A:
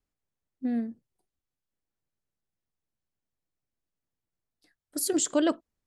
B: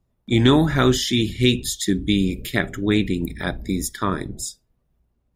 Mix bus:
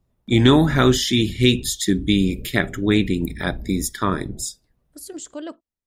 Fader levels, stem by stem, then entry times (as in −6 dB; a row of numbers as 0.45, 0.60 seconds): −8.5, +1.5 decibels; 0.00, 0.00 seconds